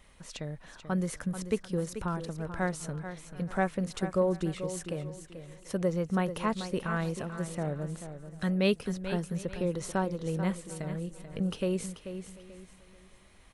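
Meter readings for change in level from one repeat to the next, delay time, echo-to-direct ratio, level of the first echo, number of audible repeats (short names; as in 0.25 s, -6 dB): no steady repeat, 0.437 s, -10.0 dB, -10.5 dB, 5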